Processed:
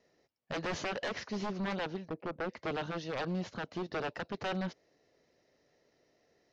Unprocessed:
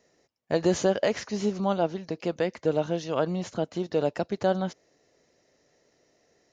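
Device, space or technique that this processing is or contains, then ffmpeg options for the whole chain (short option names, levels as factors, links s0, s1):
synthesiser wavefolder: -filter_complex "[0:a]asettb=1/sr,asplit=3[s0][s1][s2];[s0]atrim=end=2.084[s3];[s1]atrim=start=2.08:end=2.49,asetpts=PTS-STARTPTS,afade=t=in:d=0.004:c=qsin,afade=t=out:st=0.406:d=0.004:c=qsin,lowpass=1100[s4];[s2]atrim=start=2.486[s5];[s3][s4]acrossfade=d=0.004:c1=hsin:c2=qsin[s6];[s6][s5]acrossfade=d=0.004:c1=qsin:c2=hsin,aeval=exprs='0.0562*(abs(mod(val(0)/0.0562+3,4)-2)-1)':c=same,lowpass=f=5300:w=0.5412,lowpass=f=5300:w=1.3066,volume=0.596"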